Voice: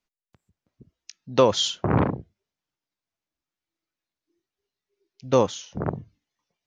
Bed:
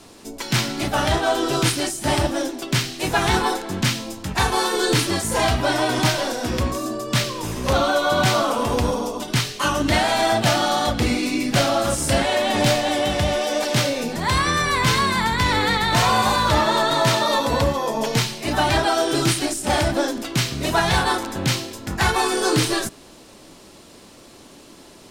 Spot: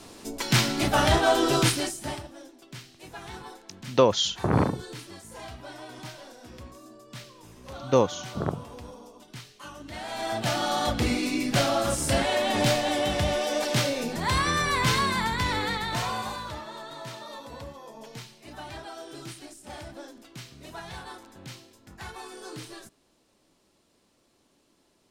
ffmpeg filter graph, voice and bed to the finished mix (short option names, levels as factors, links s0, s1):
-filter_complex "[0:a]adelay=2600,volume=0.841[s0];[1:a]volume=6.31,afade=t=out:st=1.52:d=0.71:silence=0.0891251,afade=t=in:st=9.92:d=0.98:silence=0.141254,afade=t=out:st=14.96:d=1.65:silence=0.149624[s1];[s0][s1]amix=inputs=2:normalize=0"